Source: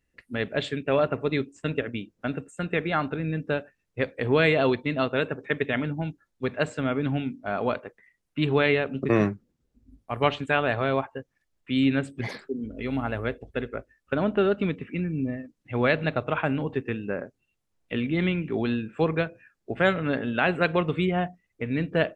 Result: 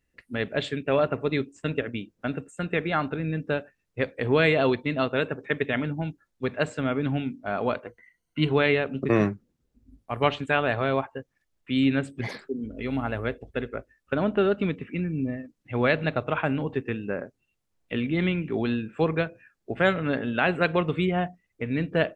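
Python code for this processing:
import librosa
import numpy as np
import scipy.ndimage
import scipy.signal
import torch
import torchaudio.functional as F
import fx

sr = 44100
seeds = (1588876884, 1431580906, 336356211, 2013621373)

y = fx.ripple_eq(x, sr, per_octave=1.9, db=11, at=(7.86, 8.51))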